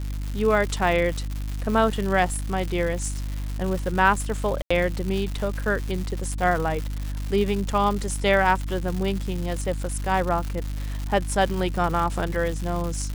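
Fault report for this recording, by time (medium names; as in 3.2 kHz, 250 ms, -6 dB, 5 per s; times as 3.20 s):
crackle 260 per s -28 dBFS
hum 50 Hz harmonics 6 -29 dBFS
4.62–4.71 s: dropout 85 ms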